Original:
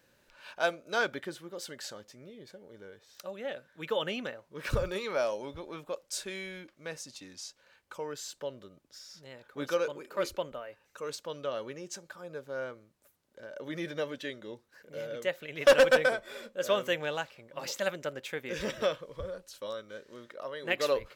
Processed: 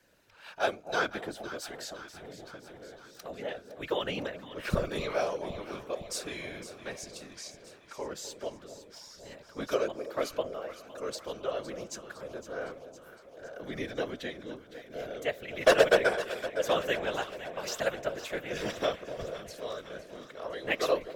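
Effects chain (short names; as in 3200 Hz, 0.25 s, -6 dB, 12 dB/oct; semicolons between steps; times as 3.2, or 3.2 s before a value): whisperiser; echo with dull and thin repeats by turns 0.255 s, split 820 Hz, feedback 79%, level -11 dB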